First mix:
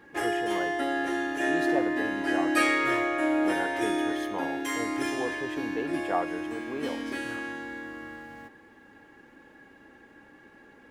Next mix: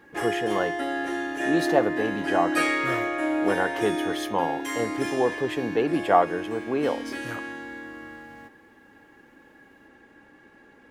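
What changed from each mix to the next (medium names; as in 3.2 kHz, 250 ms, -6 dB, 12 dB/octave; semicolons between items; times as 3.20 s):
speech +10.0 dB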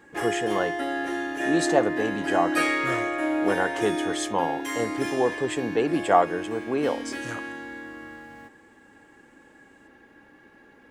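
speech: add resonant low-pass 7.9 kHz, resonance Q 6.3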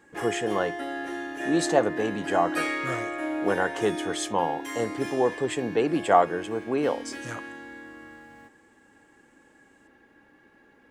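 background -4.5 dB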